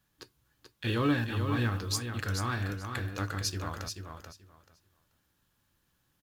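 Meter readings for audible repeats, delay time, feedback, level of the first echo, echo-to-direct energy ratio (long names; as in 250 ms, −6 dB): 2, 434 ms, 18%, −6.5 dB, −6.5 dB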